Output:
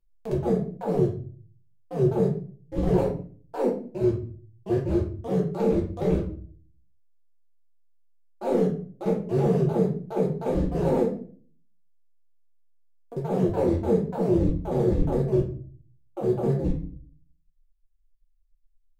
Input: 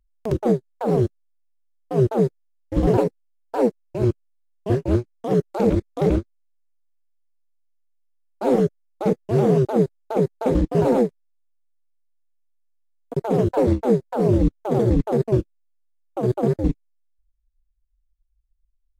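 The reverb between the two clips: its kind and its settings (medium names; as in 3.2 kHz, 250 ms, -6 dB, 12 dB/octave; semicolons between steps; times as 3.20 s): simulated room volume 36 m³, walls mixed, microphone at 0.85 m; trim -10.5 dB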